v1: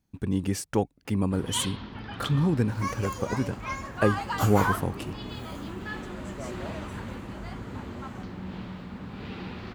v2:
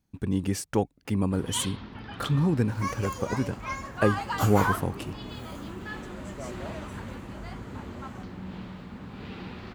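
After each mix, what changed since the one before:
reverb: off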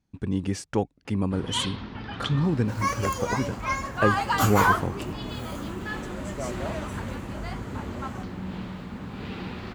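speech: add low-pass filter 7,200 Hz 12 dB per octave
first sound +4.5 dB
second sound +6.5 dB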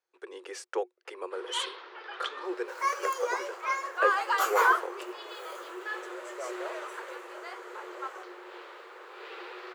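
master: add Chebyshev high-pass with heavy ripple 350 Hz, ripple 6 dB

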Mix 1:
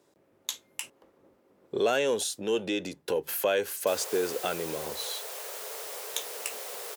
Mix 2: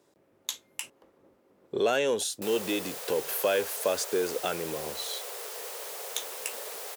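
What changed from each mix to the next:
background: entry −1.45 s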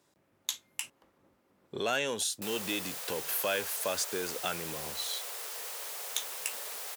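master: add parametric band 440 Hz −9.5 dB 1.4 octaves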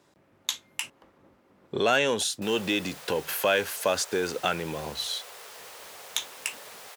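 speech +8.5 dB
master: add high-shelf EQ 6,000 Hz −10 dB

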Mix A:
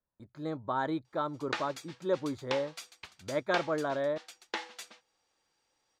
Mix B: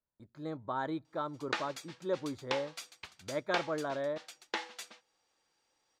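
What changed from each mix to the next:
speech −4.5 dB
reverb: on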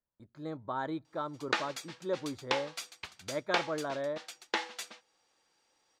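background +4.0 dB

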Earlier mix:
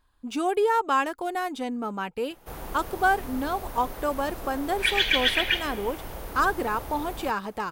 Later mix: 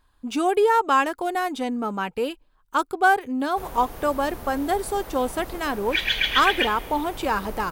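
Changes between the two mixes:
speech +4.0 dB
background: entry +1.10 s

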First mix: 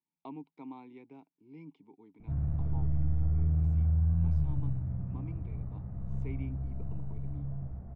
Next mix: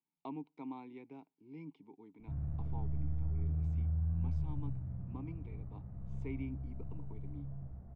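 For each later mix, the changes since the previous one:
background −7.5 dB
reverb: on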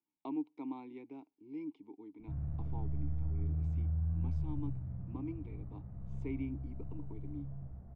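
speech: add thirty-one-band graphic EQ 160 Hz −11 dB, 315 Hz +10 dB, 1,600 Hz −5 dB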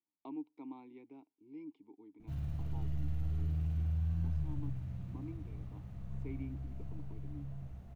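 speech −5.5 dB
background: remove Gaussian smoothing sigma 5.9 samples

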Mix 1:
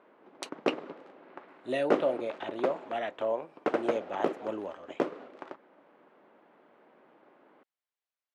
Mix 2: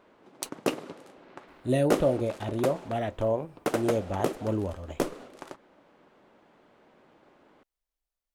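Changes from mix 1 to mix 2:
speech: add spectral tilt −4 dB per octave
master: remove band-pass filter 240–2,400 Hz

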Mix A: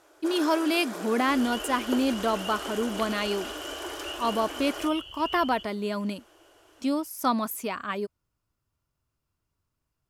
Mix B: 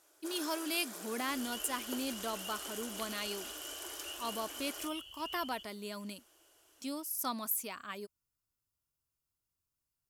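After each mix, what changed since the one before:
master: add first-order pre-emphasis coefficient 0.8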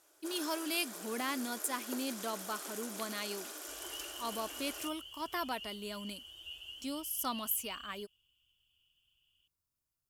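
second sound: entry +2.40 s

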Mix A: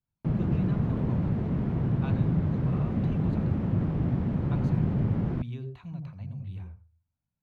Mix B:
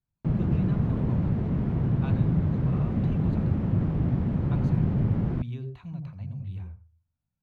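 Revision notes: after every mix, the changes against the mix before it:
master: add low-shelf EQ 110 Hz +4.5 dB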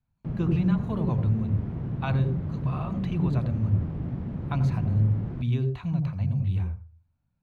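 speech +9.5 dB
background −6.5 dB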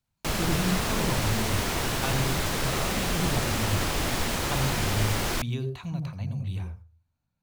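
background: remove resonant band-pass 150 Hz, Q 1.5
master: add bass and treble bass −6 dB, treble +13 dB

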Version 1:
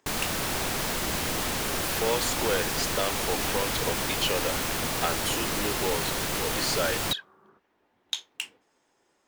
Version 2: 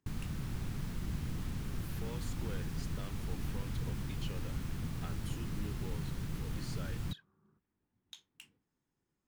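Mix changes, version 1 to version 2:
speech: add high-shelf EQ 8,600 Hz +8 dB
master: add drawn EQ curve 150 Hz 0 dB, 610 Hz −25 dB, 1,200 Hz −20 dB, 7,800 Hz −24 dB

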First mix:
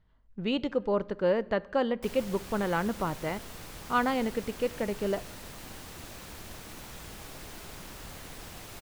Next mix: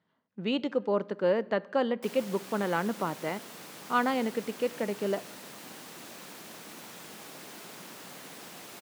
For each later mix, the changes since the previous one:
master: add high-pass filter 170 Hz 24 dB per octave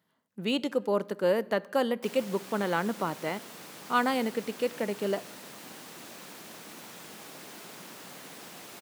speech: remove high-frequency loss of the air 160 metres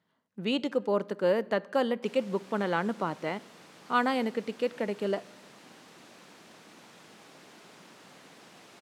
background −5.5 dB
master: add high-frequency loss of the air 56 metres

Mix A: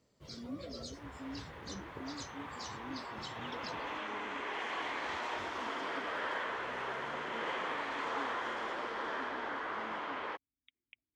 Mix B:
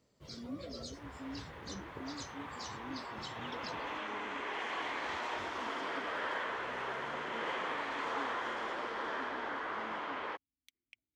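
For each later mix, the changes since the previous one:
speech: remove linear-phase brick-wall low-pass 3,800 Hz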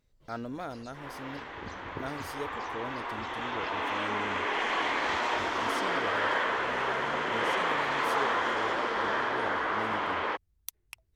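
speech: remove formant filter i
first sound −9.0 dB
second sound +9.0 dB

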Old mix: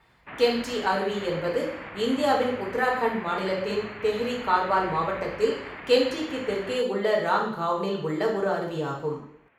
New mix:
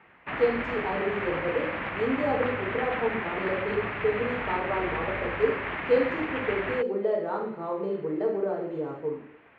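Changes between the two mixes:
speech: add resonant band-pass 370 Hz, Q 1.2
background +7.0 dB

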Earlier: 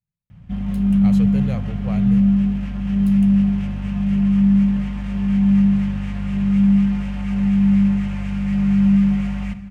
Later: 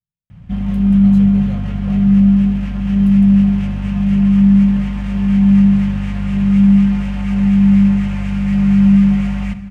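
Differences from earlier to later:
speech −6.0 dB
background +5.0 dB

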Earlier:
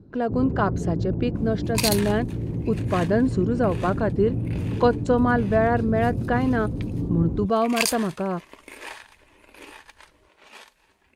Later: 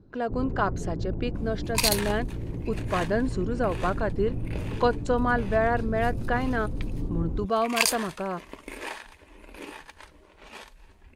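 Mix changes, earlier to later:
first sound: remove high-pass filter 91 Hz 12 dB per octave
second sound: remove high-pass filter 1,200 Hz 6 dB per octave
master: add low-shelf EQ 470 Hz −9 dB

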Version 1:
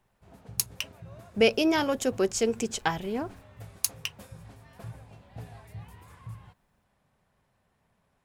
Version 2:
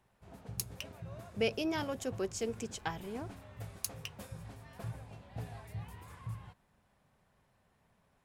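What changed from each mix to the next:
speech −10.5 dB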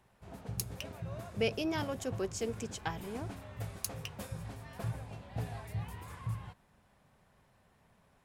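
background +4.5 dB

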